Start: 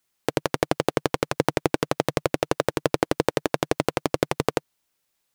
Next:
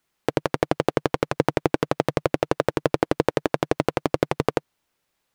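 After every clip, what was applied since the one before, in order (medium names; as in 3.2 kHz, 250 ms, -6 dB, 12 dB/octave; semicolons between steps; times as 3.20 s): in parallel at +2.5 dB: peak limiter -11.5 dBFS, peak gain reduction 10 dB; on the sum: treble shelf 3.9 kHz -10 dB; trim -2 dB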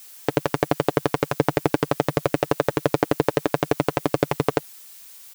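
added noise blue -45 dBFS; comb 7 ms, depth 39%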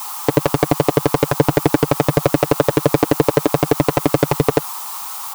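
band noise 780–1300 Hz -50 dBFS; saturation -11.5 dBFS, distortion -10 dB; loudness maximiser +16 dB; trim -1 dB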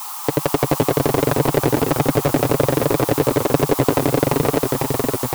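in parallel at -3 dB: compressor with a negative ratio -15 dBFS; on the sum: ever faster or slower copies 243 ms, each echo -1 st, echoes 3; trim -7.5 dB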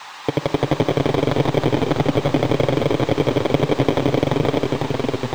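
bit-reversed sample order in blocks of 16 samples; distance through air 170 m; on a send at -13 dB: reverberation RT60 2.1 s, pre-delay 4 ms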